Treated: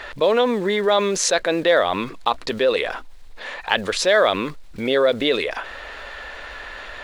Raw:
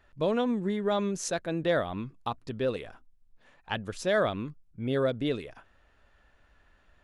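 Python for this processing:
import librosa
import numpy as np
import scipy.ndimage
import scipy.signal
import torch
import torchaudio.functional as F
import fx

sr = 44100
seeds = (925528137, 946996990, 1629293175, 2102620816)

y = fx.block_float(x, sr, bits=7)
y = fx.graphic_eq_10(y, sr, hz=(125, 500, 1000, 2000, 4000, 8000), db=(-12, 10, 7, 10, 12, 5))
y = fx.env_flatten(y, sr, amount_pct=50)
y = y * 10.0 ** (-2.0 / 20.0)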